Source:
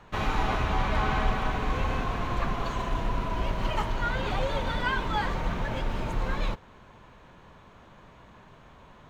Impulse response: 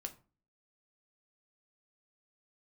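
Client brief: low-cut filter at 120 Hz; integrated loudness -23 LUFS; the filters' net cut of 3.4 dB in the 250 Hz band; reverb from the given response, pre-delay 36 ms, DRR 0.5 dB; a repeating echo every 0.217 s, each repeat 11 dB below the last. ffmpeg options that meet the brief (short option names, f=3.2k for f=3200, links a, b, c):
-filter_complex "[0:a]highpass=120,equalizer=f=250:t=o:g=-4,aecho=1:1:217|434|651:0.282|0.0789|0.0221,asplit=2[a][b];[1:a]atrim=start_sample=2205,adelay=36[c];[b][c]afir=irnorm=-1:irlink=0,volume=2.5dB[d];[a][d]amix=inputs=2:normalize=0,volume=5.5dB"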